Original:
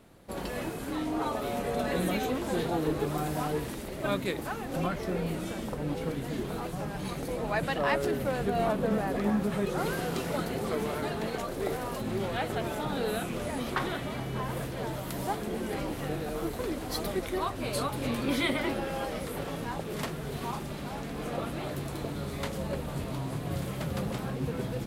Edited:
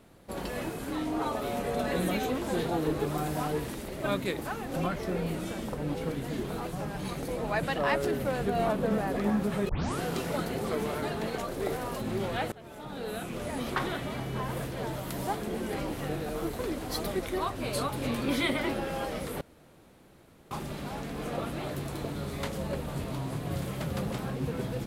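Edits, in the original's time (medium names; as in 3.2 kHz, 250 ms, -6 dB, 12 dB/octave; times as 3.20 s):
9.69 s: tape start 0.32 s
12.52–13.65 s: fade in, from -21.5 dB
19.41–20.51 s: room tone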